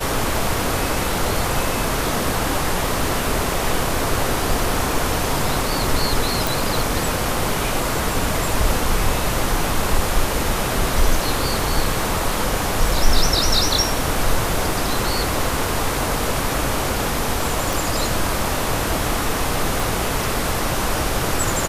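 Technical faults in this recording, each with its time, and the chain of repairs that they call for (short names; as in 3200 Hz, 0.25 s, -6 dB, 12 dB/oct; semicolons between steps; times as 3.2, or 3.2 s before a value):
6.47 pop
17.73 pop
19.8 pop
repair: de-click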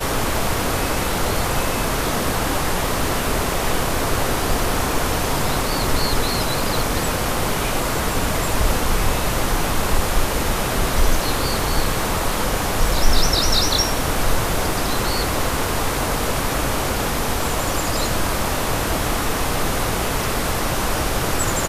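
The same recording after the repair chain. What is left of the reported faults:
19.8 pop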